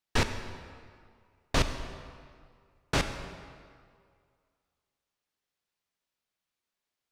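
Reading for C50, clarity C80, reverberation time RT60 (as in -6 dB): 8.5 dB, 9.0 dB, 2.1 s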